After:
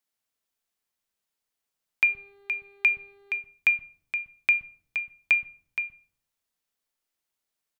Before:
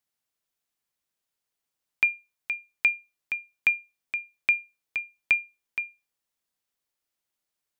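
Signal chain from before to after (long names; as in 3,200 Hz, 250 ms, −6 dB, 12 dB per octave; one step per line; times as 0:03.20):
0:02.05–0:03.37: hum with harmonics 400 Hz, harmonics 11, −59 dBFS −8 dB per octave
multiband delay without the direct sound highs, lows 120 ms, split 160 Hz
on a send at −11 dB: convolution reverb RT60 0.55 s, pre-delay 4 ms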